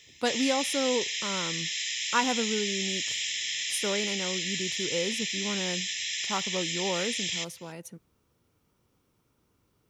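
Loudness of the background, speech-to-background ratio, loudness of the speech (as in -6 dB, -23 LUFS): -29.5 LUFS, -3.5 dB, -33.0 LUFS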